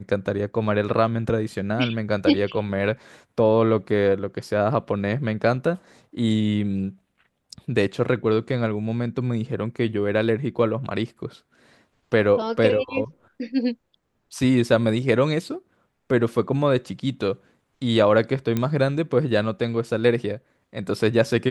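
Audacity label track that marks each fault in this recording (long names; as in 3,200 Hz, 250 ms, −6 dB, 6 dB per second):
18.570000	18.570000	click −11 dBFS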